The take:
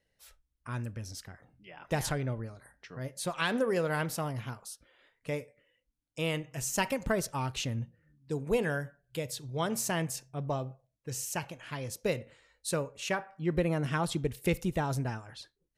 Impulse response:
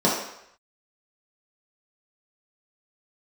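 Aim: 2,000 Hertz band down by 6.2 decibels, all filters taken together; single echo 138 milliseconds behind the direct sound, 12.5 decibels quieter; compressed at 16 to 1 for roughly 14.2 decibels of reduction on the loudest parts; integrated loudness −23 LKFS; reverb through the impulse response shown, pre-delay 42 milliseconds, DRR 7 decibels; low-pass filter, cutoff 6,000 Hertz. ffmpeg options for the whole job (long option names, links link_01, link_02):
-filter_complex "[0:a]lowpass=6000,equalizer=frequency=2000:width_type=o:gain=-8.5,acompressor=threshold=-38dB:ratio=16,aecho=1:1:138:0.237,asplit=2[link_01][link_02];[1:a]atrim=start_sample=2205,adelay=42[link_03];[link_02][link_03]afir=irnorm=-1:irlink=0,volume=-24.5dB[link_04];[link_01][link_04]amix=inputs=2:normalize=0,volume=20dB"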